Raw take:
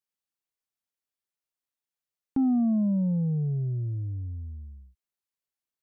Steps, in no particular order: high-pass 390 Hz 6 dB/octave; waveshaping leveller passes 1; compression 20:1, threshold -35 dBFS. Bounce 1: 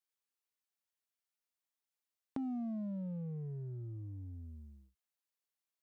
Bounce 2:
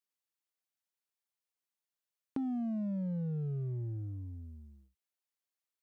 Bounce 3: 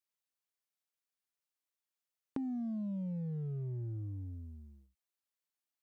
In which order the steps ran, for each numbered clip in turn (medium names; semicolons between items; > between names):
compression > high-pass > waveshaping leveller; high-pass > compression > waveshaping leveller; high-pass > waveshaping leveller > compression